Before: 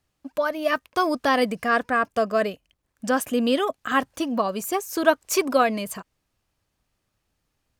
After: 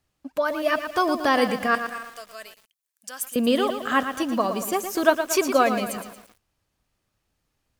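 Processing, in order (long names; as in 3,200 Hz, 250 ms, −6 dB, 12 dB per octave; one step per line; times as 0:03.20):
0:01.75–0:03.36: first difference
feedback echo at a low word length 115 ms, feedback 55%, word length 7 bits, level −8.5 dB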